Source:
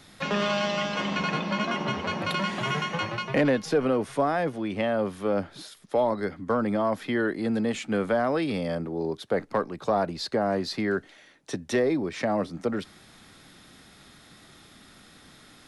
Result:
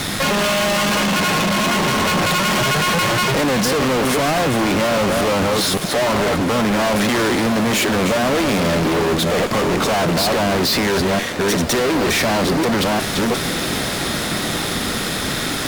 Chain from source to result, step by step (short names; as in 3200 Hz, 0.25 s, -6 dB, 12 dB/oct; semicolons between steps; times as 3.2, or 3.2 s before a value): reverse delay 0.361 s, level -11 dB; in parallel at -1 dB: negative-ratio compressor -33 dBFS; on the sum: fuzz box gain 42 dB, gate -49 dBFS; diffused feedback echo 1.703 s, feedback 63%, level -12 dB; gain -3.5 dB